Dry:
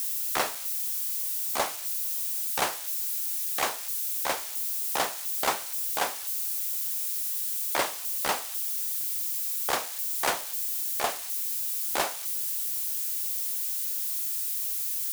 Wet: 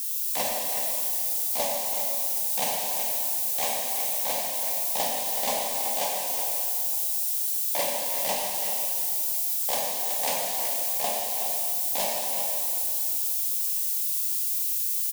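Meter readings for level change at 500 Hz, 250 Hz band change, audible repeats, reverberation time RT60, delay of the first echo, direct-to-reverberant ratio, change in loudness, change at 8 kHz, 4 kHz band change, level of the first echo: +3.5 dB, +0.5 dB, 1, 2.8 s, 374 ms, -3.0 dB, +3.0 dB, +3.5 dB, +2.0 dB, -8.0 dB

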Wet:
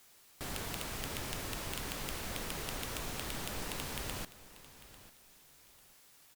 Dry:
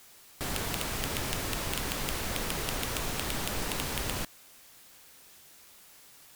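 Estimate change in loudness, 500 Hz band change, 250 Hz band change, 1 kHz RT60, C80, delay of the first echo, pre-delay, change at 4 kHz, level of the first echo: -7.0 dB, -7.0 dB, -7.0 dB, no reverb, no reverb, 846 ms, no reverb, -7.0 dB, -17.0 dB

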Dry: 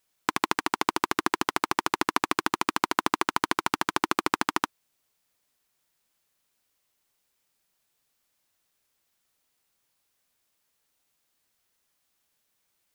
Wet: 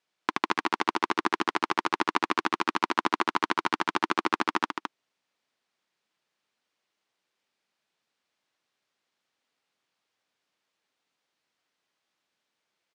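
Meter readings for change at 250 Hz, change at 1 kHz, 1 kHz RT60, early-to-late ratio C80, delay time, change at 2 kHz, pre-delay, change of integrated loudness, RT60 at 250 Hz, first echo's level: -0.5 dB, 0.0 dB, no reverb, no reverb, 213 ms, 0.0 dB, no reverb, -0.5 dB, no reverb, -6.0 dB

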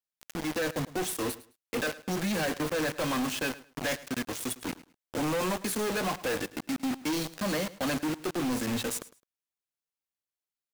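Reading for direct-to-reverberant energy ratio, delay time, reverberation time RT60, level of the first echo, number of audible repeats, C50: no reverb, 106 ms, no reverb, -18.0 dB, 2, no reverb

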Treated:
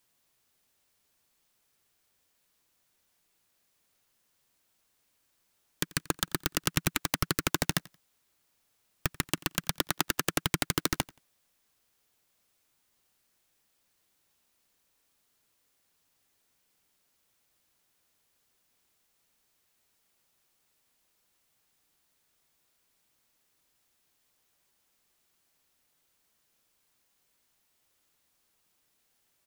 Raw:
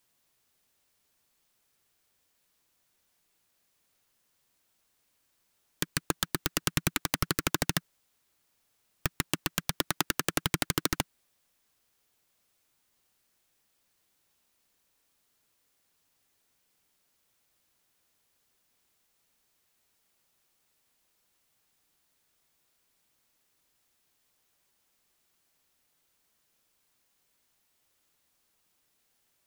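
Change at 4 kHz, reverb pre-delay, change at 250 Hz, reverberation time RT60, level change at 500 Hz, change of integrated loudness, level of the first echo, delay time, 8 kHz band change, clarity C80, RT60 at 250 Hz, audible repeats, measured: 0.0 dB, no reverb, 0.0 dB, no reverb, 0.0 dB, 0.0 dB, -23.0 dB, 88 ms, 0.0 dB, no reverb, no reverb, 1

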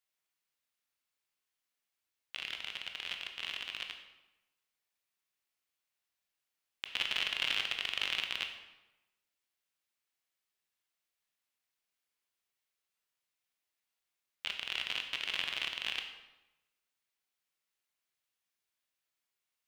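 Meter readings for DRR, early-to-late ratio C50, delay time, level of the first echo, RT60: 4.0 dB, 7.0 dB, no echo, no echo, 1.0 s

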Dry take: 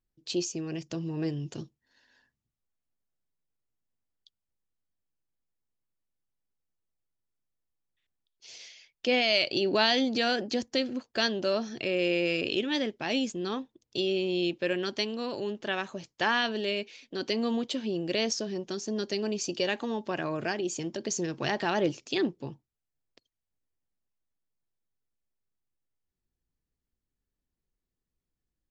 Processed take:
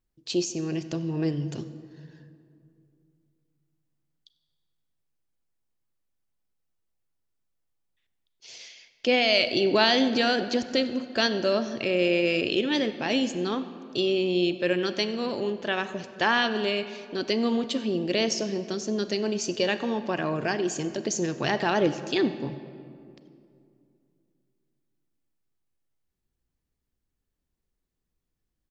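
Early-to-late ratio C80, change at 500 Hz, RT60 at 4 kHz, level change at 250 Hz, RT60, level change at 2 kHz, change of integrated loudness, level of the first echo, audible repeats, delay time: 12.5 dB, +4.0 dB, 1.4 s, +4.5 dB, 2.5 s, +3.5 dB, +3.5 dB, -21.5 dB, 1, 95 ms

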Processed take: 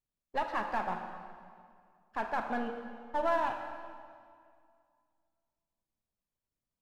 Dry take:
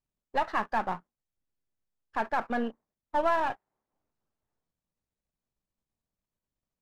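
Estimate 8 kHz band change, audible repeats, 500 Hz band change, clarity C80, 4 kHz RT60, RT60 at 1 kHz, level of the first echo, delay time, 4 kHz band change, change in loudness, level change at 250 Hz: no reading, no echo, -3.0 dB, 6.5 dB, 1.7 s, 2.1 s, no echo, no echo, -4.0 dB, -4.5 dB, -4.0 dB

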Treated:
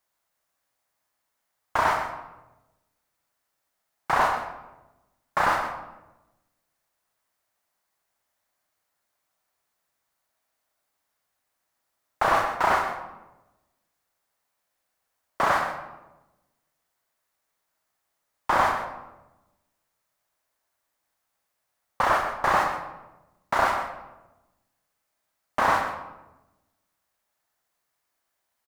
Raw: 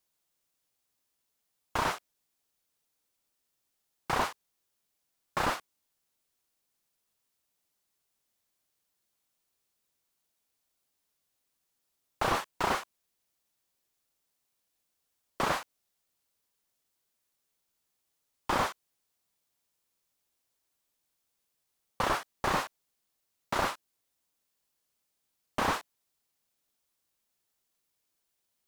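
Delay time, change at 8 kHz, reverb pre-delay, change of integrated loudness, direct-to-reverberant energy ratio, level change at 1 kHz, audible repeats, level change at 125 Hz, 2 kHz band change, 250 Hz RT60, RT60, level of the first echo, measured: 125 ms, 0.0 dB, 22 ms, +7.5 dB, 3.0 dB, +9.5 dB, 1, +1.0 dB, +8.5 dB, 1.3 s, 1.0 s, -10.5 dB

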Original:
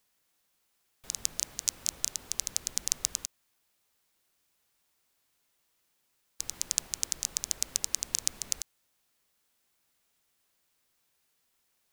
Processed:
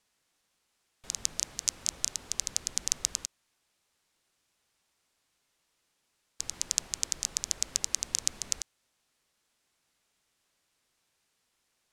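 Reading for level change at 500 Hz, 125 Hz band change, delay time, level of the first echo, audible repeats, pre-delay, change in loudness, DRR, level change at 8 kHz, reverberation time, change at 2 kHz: +1.5 dB, +1.5 dB, no echo, no echo, no echo, no reverb, +0.5 dB, no reverb, +0.5 dB, no reverb, +1.5 dB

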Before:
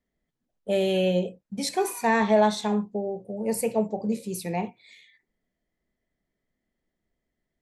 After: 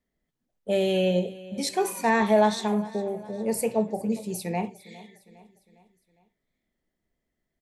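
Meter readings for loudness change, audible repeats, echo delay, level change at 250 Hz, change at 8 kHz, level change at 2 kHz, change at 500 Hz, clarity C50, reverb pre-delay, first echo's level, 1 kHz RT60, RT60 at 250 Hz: 0.0 dB, 3, 407 ms, 0.0 dB, 0.0 dB, 0.0 dB, 0.0 dB, no reverb, no reverb, -19.0 dB, no reverb, no reverb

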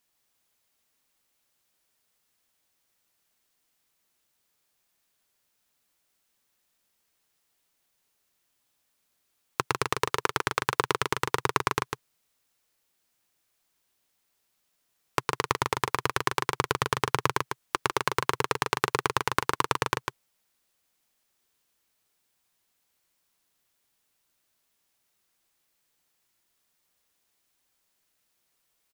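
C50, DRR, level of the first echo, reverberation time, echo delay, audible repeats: no reverb, no reverb, -5.5 dB, no reverb, 150 ms, 1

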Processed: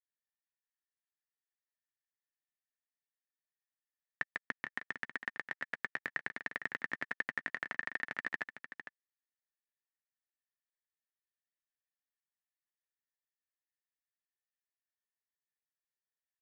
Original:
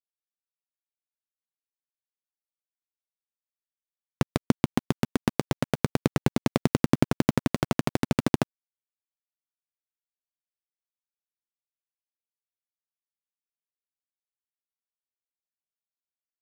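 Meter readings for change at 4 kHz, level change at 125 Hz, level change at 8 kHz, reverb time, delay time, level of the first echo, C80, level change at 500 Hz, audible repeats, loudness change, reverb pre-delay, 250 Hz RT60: -15.5 dB, -34.5 dB, under -20 dB, no reverb, 455 ms, -10.5 dB, no reverb, -23.5 dB, 1, -12.5 dB, no reverb, no reverb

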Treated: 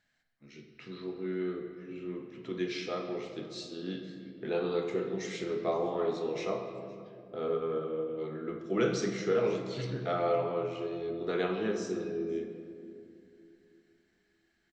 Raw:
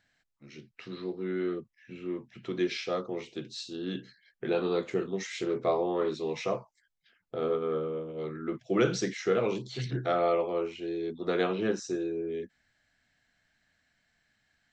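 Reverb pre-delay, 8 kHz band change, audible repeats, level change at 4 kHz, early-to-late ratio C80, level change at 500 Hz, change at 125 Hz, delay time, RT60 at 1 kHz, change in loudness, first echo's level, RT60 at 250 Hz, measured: 5 ms, -3.5 dB, 1, -3.5 dB, 7.0 dB, -1.5 dB, -2.0 dB, 513 ms, 2.1 s, -2.0 dB, -23.0 dB, 3.5 s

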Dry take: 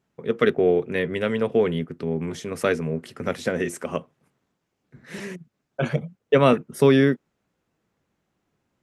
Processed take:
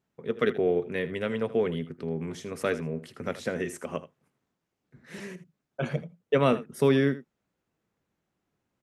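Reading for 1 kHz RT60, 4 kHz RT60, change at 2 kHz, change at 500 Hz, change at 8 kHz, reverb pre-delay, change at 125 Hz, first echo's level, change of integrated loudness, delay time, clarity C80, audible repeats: no reverb, no reverb, -6.0 dB, -6.0 dB, -6.0 dB, no reverb, -5.5 dB, -15.5 dB, -6.0 dB, 80 ms, no reverb, 1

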